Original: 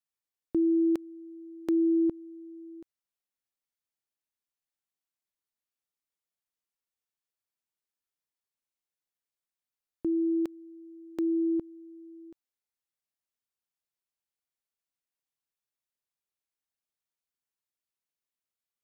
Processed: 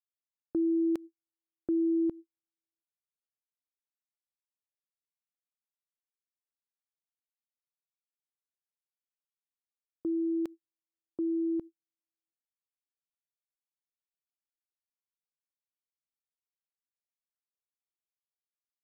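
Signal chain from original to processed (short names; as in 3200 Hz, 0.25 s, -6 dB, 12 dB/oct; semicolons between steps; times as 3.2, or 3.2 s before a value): gate -37 dBFS, range -58 dB; gain -3 dB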